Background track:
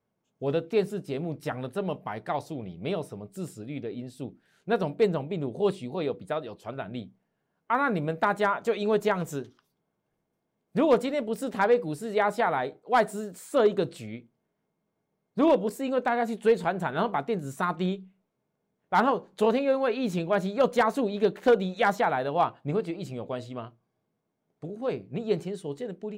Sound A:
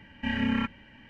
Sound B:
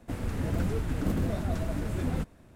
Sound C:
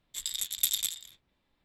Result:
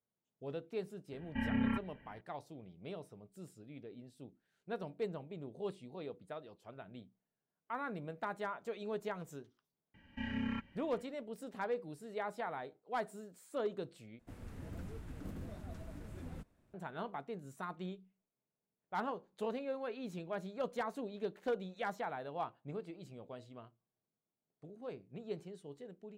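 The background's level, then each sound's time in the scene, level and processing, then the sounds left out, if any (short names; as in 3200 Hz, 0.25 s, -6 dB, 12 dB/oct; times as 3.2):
background track -15.5 dB
1.12 add A -5.5 dB + air absorption 470 m
9.94 add A -13 dB + low shelf 380 Hz +3.5 dB
14.19 replace with B -17 dB
not used: C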